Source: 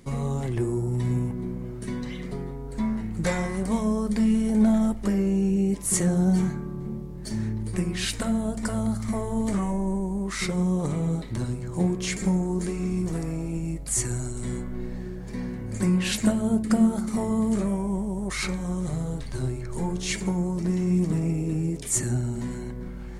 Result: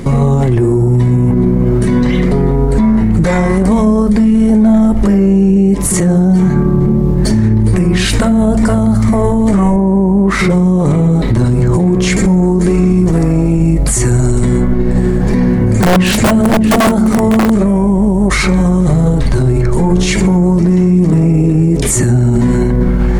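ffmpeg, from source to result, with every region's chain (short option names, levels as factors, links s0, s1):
-filter_complex "[0:a]asettb=1/sr,asplit=3[s0][s1][s2];[s0]atrim=end=9.764[s3];[s1]atrim=start=9.76:end=10.5,asetpts=PTS-STARTPTS,afade=t=in:d=0.004:c=qsin,afade=t=out:st=0.736:d=0.004:c=qsin,highpass=f=86:p=1,equalizer=f=6900:t=o:w=2.5:g=-10[s4];[s2]atrim=start=10.496[s5];[s3][s4]acrossfade=d=0.004:c1=hsin:c2=qsin[s6];[s6][s5]acrossfade=d=0.004:c1=qsin:c2=hsin,asettb=1/sr,asplit=3[s7][s8][s9];[s7]atrim=end=14.304[s10];[s8]atrim=start=14.3:end=17.5,asetpts=PTS-STARTPTS,afade=t=in:d=0.004:c=qsin,afade=t=out:st=3.196:d=0.004:c=qsin,aeval=exprs='(mod(7.08*val(0)+1,2)-1)/7.08':c=same,aecho=1:1:608:0.178,atrim=end_sample=141120[s11];[s9]atrim=start=17.496[s12];[s10][s11]acrossfade=d=0.004:c1=hsin:c2=qsin[s13];[s13][s12]acrossfade=d=0.004:c1=qsin:c2=hsin,highshelf=f=2200:g=-9.5,acompressor=threshold=0.0316:ratio=2.5,alimiter=level_in=33.5:limit=0.891:release=50:level=0:latency=1,volume=0.75"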